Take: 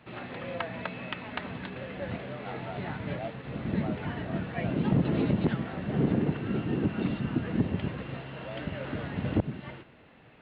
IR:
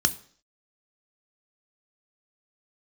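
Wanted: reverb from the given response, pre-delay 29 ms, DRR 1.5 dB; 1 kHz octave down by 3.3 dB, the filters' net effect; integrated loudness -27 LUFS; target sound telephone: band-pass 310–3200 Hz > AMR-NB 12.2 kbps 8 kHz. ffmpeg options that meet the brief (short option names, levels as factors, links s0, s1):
-filter_complex "[0:a]equalizer=f=1000:t=o:g=-4.5,asplit=2[s0][s1];[1:a]atrim=start_sample=2205,adelay=29[s2];[s1][s2]afir=irnorm=-1:irlink=0,volume=0.266[s3];[s0][s3]amix=inputs=2:normalize=0,highpass=310,lowpass=3200,volume=2.37" -ar 8000 -c:a libopencore_amrnb -b:a 12200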